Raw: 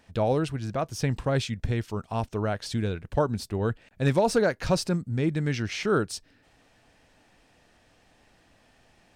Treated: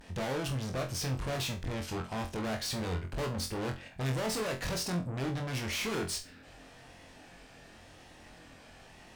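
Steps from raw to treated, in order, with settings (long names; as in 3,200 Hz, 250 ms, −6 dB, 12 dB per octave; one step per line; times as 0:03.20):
pitch vibrato 0.9 Hz 77 cents
tube saturation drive 41 dB, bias 0.35
flutter between parallel walls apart 3.9 metres, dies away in 0.27 s
level +7 dB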